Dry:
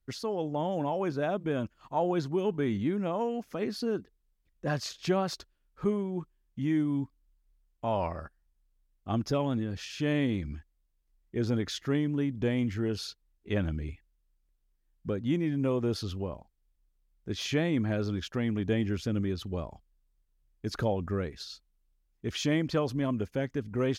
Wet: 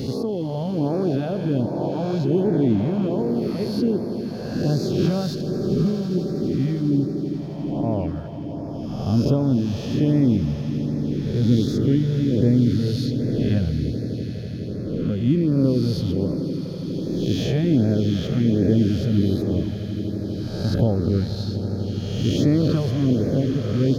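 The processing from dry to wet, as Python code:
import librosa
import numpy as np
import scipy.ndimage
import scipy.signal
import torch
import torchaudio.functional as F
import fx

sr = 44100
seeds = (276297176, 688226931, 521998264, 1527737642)

y = fx.spec_swells(x, sr, rise_s=1.45)
y = fx.graphic_eq(y, sr, hz=(125, 250, 1000, 2000, 8000), db=(6, 5, -11, -10, -12))
y = fx.echo_swell(y, sr, ms=82, loudest=8, wet_db=-16.5)
y = fx.filter_lfo_notch(y, sr, shape='sine', hz=1.3, low_hz=270.0, high_hz=3100.0, q=1.3)
y = F.gain(torch.from_numpy(y), 5.0).numpy()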